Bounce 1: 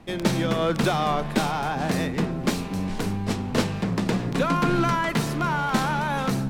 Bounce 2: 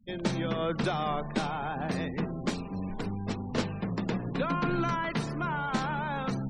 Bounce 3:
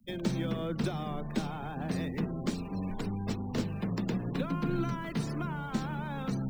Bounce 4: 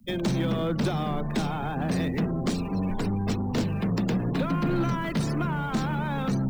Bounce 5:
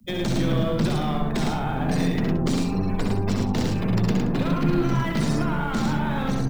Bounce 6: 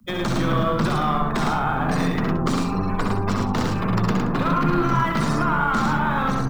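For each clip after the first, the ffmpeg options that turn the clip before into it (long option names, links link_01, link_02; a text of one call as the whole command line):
ffmpeg -i in.wav -af "afftfilt=real='re*gte(hypot(re,im),0.02)':imag='im*gte(hypot(re,im),0.02)':win_size=1024:overlap=0.75,volume=-7dB" out.wav
ffmpeg -i in.wav -filter_complex "[0:a]acrossover=split=400[link_01][link_02];[link_02]acompressor=threshold=-42dB:ratio=4[link_03];[link_01][link_03]amix=inputs=2:normalize=0,highshelf=frequency=5100:gain=9.5,acrossover=split=110|1300|1600[link_04][link_05][link_06][link_07];[link_07]acrusher=bits=3:mode=log:mix=0:aa=0.000001[link_08];[link_04][link_05][link_06][link_08]amix=inputs=4:normalize=0" out.wav
ffmpeg -i in.wav -af "asoftclip=type=tanh:threshold=-28.5dB,volume=9dB" out.wav
ffmpeg -i in.wav -filter_complex "[0:a]acrossover=split=260|3000[link_01][link_02][link_03];[link_02]acompressor=threshold=-30dB:ratio=6[link_04];[link_01][link_04][link_03]amix=inputs=3:normalize=0,aeval=exprs='0.158*(cos(1*acos(clip(val(0)/0.158,-1,1)))-cos(1*PI/2))+0.01*(cos(6*acos(clip(val(0)/0.158,-1,1)))-cos(6*PI/2))':channel_layout=same,asplit=2[link_05][link_06];[link_06]aecho=0:1:63|71|108|174:0.531|0.422|0.668|0.188[link_07];[link_05][link_07]amix=inputs=2:normalize=0,volume=1.5dB" out.wav
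ffmpeg -i in.wav -af "equalizer=frequency=1200:width=1.6:gain=13" out.wav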